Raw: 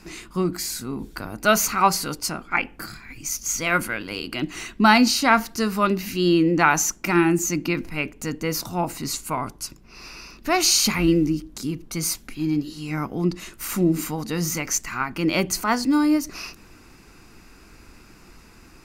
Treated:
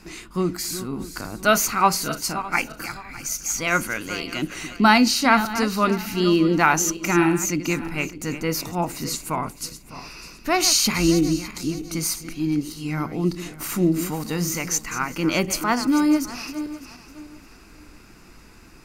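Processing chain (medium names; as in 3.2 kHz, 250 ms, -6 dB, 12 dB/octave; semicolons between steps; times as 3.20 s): backward echo that repeats 303 ms, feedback 51%, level -12 dB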